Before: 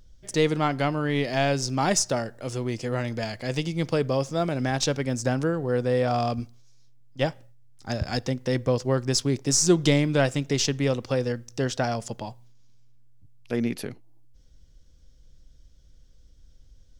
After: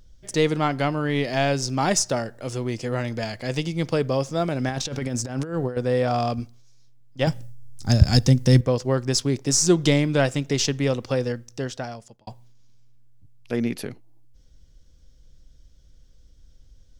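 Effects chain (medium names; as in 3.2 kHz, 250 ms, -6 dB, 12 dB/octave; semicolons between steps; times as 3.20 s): 4.69–5.77 s: compressor with a negative ratio -28 dBFS, ratio -0.5; 7.27–8.61 s: tone controls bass +14 dB, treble +12 dB; 11.22–12.27 s: fade out; trim +1.5 dB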